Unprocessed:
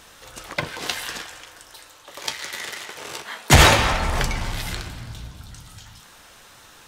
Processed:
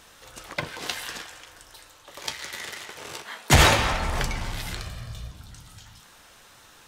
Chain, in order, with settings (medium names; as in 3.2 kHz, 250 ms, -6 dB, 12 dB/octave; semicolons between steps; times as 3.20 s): 1.48–3.17 s: bass shelf 120 Hz +8 dB; 4.80–5.32 s: comb 1.7 ms, depth 62%; trim -4 dB